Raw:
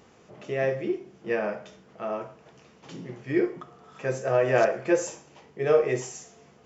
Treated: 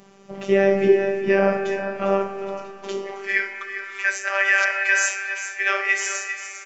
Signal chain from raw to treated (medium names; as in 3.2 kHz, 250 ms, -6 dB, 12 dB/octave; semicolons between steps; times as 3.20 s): gate -53 dBFS, range -7 dB; high-pass sweep 99 Hz -> 1.8 kHz, 2.59–3.33 s; robot voice 196 Hz; on a send: delay 400 ms -10.5 dB; on the sum: spring tank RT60 3.8 s, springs 33/59 ms, chirp 50 ms, DRR 9 dB; loudness maximiser +17.5 dB; trim -4.5 dB